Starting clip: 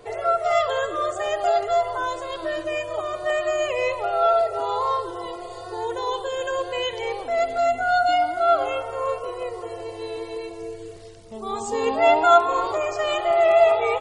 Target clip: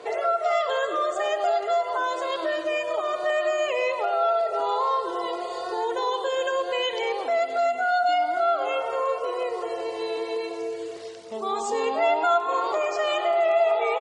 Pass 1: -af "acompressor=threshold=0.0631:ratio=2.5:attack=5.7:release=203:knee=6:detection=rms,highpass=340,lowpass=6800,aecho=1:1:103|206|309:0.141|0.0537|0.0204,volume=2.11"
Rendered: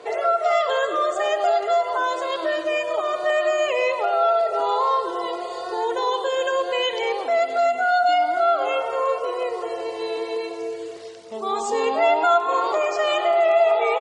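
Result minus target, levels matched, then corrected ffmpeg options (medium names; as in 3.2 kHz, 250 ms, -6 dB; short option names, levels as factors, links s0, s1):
compression: peak gain reduction -3.5 dB
-af "acompressor=threshold=0.0316:ratio=2.5:attack=5.7:release=203:knee=6:detection=rms,highpass=340,lowpass=6800,aecho=1:1:103|206|309:0.141|0.0537|0.0204,volume=2.11"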